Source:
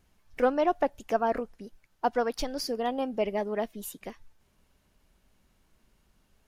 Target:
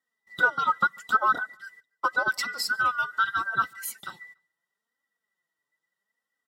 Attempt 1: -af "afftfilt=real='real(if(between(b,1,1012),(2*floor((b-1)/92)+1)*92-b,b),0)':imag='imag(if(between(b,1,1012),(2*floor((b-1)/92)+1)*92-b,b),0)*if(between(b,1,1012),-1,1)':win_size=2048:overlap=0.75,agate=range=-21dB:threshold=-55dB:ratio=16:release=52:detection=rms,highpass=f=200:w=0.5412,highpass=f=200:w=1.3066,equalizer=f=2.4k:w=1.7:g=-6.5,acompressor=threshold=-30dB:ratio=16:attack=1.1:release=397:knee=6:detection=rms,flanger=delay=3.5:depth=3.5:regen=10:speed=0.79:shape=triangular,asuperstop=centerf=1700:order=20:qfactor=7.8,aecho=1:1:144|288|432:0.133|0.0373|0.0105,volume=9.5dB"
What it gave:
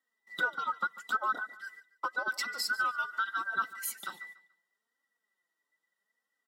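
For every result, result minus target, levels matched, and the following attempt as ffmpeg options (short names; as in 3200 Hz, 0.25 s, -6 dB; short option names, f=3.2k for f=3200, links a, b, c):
compressor: peak gain reduction +10 dB; echo-to-direct +11 dB; 125 Hz band -7.5 dB
-af "afftfilt=real='real(if(between(b,1,1012),(2*floor((b-1)/92)+1)*92-b,b),0)':imag='imag(if(between(b,1,1012),(2*floor((b-1)/92)+1)*92-b,b),0)*if(between(b,1,1012),-1,1)':win_size=2048:overlap=0.75,agate=range=-21dB:threshold=-55dB:ratio=16:release=52:detection=rms,highpass=f=200:w=0.5412,highpass=f=200:w=1.3066,equalizer=f=2.4k:w=1.7:g=-6.5,acompressor=threshold=-19dB:ratio=16:attack=1.1:release=397:knee=6:detection=rms,flanger=delay=3.5:depth=3.5:regen=10:speed=0.79:shape=triangular,asuperstop=centerf=1700:order=20:qfactor=7.8,aecho=1:1:144|288|432:0.133|0.0373|0.0105,volume=9.5dB"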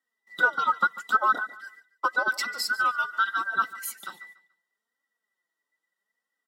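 125 Hz band -9.0 dB; echo-to-direct +11 dB
-af "afftfilt=real='real(if(between(b,1,1012),(2*floor((b-1)/92)+1)*92-b,b),0)':imag='imag(if(between(b,1,1012),(2*floor((b-1)/92)+1)*92-b,b),0)*if(between(b,1,1012),-1,1)':win_size=2048:overlap=0.75,agate=range=-21dB:threshold=-55dB:ratio=16:release=52:detection=rms,highpass=f=81:w=0.5412,highpass=f=81:w=1.3066,equalizer=f=2.4k:w=1.7:g=-6.5,acompressor=threshold=-19dB:ratio=16:attack=1.1:release=397:knee=6:detection=rms,flanger=delay=3.5:depth=3.5:regen=10:speed=0.79:shape=triangular,asuperstop=centerf=1700:order=20:qfactor=7.8,aecho=1:1:144|288|432:0.133|0.0373|0.0105,volume=9.5dB"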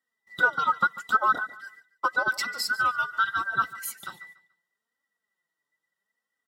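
echo-to-direct +11 dB
-af "afftfilt=real='real(if(between(b,1,1012),(2*floor((b-1)/92)+1)*92-b,b),0)':imag='imag(if(between(b,1,1012),(2*floor((b-1)/92)+1)*92-b,b),0)*if(between(b,1,1012),-1,1)':win_size=2048:overlap=0.75,agate=range=-21dB:threshold=-55dB:ratio=16:release=52:detection=rms,highpass=f=81:w=0.5412,highpass=f=81:w=1.3066,equalizer=f=2.4k:w=1.7:g=-6.5,acompressor=threshold=-19dB:ratio=16:attack=1.1:release=397:knee=6:detection=rms,flanger=delay=3.5:depth=3.5:regen=10:speed=0.79:shape=triangular,asuperstop=centerf=1700:order=20:qfactor=7.8,aecho=1:1:144|288:0.0376|0.0105,volume=9.5dB"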